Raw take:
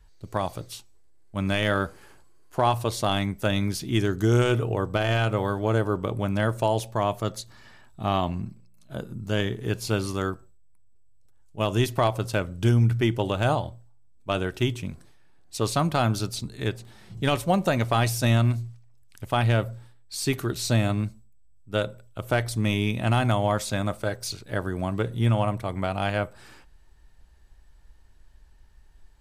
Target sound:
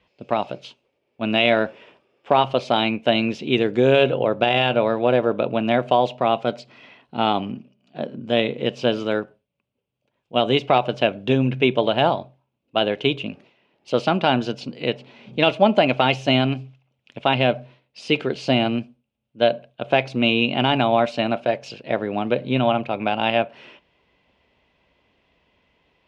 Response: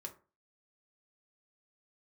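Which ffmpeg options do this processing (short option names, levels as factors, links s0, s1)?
-af "aexciter=amount=2.1:drive=3.2:freq=2100,asetrate=49392,aresample=44100,highpass=220,equalizer=f=240:t=q:w=4:g=4,equalizer=f=570:t=q:w=4:g=7,equalizer=f=1200:t=q:w=4:g=-4,equalizer=f=1800:t=q:w=4:g=-6,equalizer=f=2600:t=q:w=4:g=4,lowpass=f=3400:w=0.5412,lowpass=f=3400:w=1.3066,volume=1.78"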